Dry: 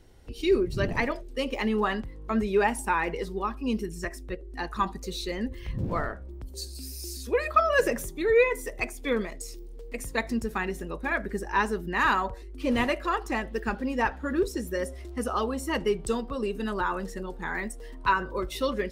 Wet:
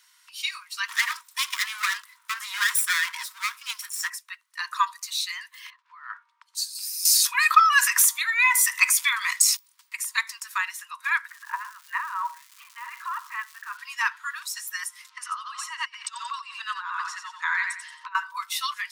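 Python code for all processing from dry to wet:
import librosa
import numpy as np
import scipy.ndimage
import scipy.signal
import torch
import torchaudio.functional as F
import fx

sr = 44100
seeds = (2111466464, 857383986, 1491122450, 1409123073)

y = fx.chain(x, sr, fx.lower_of_two(delay_ms=0.54),
    fx.high_shelf(hz=5700.0, db=9.0), at=(0.88, 4.1))
y = fx.chain(y, sr, fx.over_compress(threshold_db=-34.0, ratio=-0.5),
    fx.spacing_loss(db_at_10k=26), at=(5.7, 6.55))
y = fx.chain(y, sr, fx.highpass(hz=180.0, slope=12),
    fx.env_flatten(amount_pct=50), at=(7.05, 9.57))
y = fx.lowpass(y, sr, hz=1400.0, slope=12, at=(11.27, 13.76), fade=0.02)
y = fx.over_compress(y, sr, threshold_db=-30.0, ratio=-0.5, at=(11.27, 13.76), fade=0.02)
y = fx.dmg_crackle(y, sr, seeds[0], per_s=490.0, level_db=-46.0, at=(11.27, 13.76), fade=0.02)
y = fx.chain(y, sr, fx.lowpass(hz=5200.0, slope=12),
    fx.echo_feedback(ms=90, feedback_pct=33, wet_db=-6.5),
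    fx.over_compress(threshold_db=-31.0, ratio=-0.5), at=(15.09, 18.15))
y = scipy.signal.sosfilt(scipy.signal.cheby1(10, 1.0, 940.0, 'highpass', fs=sr, output='sos'), y)
y = fx.high_shelf(y, sr, hz=3700.0, db=7.0)
y = y * 10.0 ** (5.0 / 20.0)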